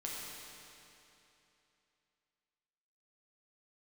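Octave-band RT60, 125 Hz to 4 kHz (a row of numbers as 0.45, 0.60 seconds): 3.0, 3.0, 3.0, 3.0, 2.9, 2.7 seconds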